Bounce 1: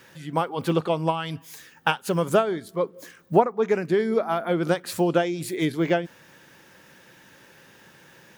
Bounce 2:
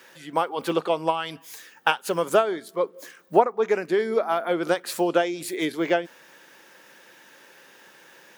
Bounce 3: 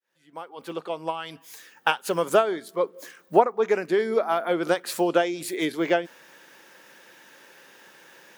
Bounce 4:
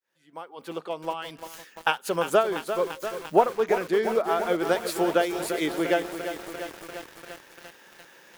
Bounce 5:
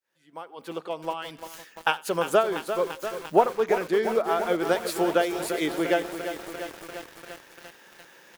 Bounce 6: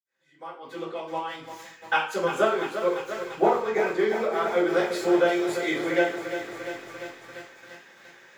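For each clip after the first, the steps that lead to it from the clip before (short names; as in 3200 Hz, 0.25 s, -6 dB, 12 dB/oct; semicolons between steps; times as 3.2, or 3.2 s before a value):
HPF 340 Hz 12 dB/oct; gain +1.5 dB
opening faded in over 2.14 s
lo-fi delay 0.345 s, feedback 80%, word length 6-bit, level -9 dB; gain -1.5 dB
echo 89 ms -23 dB
reverb RT60 0.50 s, pre-delay 47 ms; gain +7 dB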